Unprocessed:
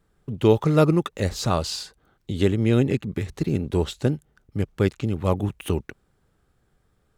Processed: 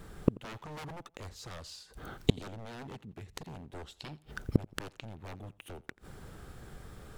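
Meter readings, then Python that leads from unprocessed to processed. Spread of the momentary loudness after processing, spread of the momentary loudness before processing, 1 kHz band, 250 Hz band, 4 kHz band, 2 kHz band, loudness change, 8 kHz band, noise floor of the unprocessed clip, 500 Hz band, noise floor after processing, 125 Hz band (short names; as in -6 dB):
17 LU, 13 LU, -15.5 dB, -14.5 dB, -11.0 dB, -10.0 dB, -16.0 dB, -14.0 dB, -67 dBFS, -18.5 dB, -65 dBFS, -15.0 dB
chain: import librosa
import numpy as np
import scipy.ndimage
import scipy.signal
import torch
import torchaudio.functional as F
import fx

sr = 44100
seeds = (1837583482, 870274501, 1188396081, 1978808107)

p1 = 10.0 ** (-21.0 / 20.0) * (np.abs((x / 10.0 ** (-21.0 / 20.0) + 3.0) % 4.0 - 2.0) - 1.0)
p2 = fx.spec_box(p1, sr, start_s=4.0, length_s=0.31, low_hz=2200.0, high_hz=5500.0, gain_db=10)
p3 = fx.gate_flip(p2, sr, shuts_db=-26.0, range_db=-35)
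p4 = p3 + fx.echo_feedback(p3, sr, ms=86, feedback_pct=35, wet_db=-22.0, dry=0)
y = p4 * 10.0 ** (17.5 / 20.0)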